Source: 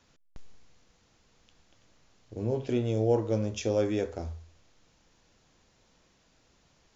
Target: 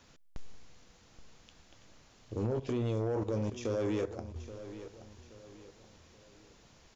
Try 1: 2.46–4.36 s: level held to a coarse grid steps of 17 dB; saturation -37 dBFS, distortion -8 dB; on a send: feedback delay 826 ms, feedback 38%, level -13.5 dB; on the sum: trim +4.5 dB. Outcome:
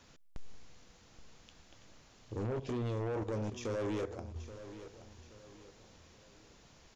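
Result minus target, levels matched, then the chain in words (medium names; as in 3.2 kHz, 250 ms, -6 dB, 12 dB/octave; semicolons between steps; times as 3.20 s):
saturation: distortion +6 dB
2.46–4.36 s: level held to a coarse grid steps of 17 dB; saturation -30.5 dBFS, distortion -14 dB; on a send: feedback delay 826 ms, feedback 38%, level -13.5 dB; on the sum: trim +4.5 dB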